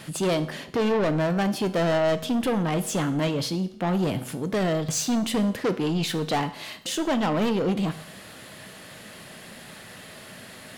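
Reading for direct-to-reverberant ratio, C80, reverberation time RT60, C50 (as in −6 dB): 10.5 dB, 17.0 dB, 0.65 s, 14.0 dB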